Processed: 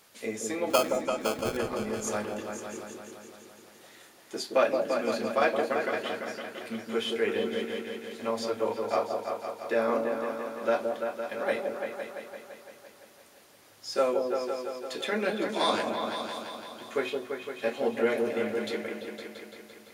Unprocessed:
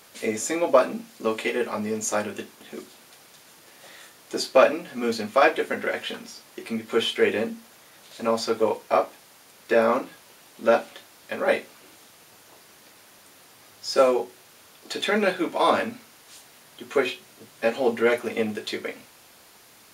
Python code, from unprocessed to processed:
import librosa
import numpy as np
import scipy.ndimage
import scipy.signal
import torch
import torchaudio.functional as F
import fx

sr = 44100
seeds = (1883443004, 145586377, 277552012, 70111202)

y = fx.sample_hold(x, sr, seeds[0], rate_hz=1900.0, jitter_pct=0, at=(0.7, 1.57))
y = fx.band_shelf(y, sr, hz=5500.0, db=9.5, octaves=1.7, at=(15.49, 15.9))
y = fx.echo_opening(y, sr, ms=170, hz=750, octaves=2, feedback_pct=70, wet_db=-3)
y = F.gain(torch.from_numpy(y), -7.5).numpy()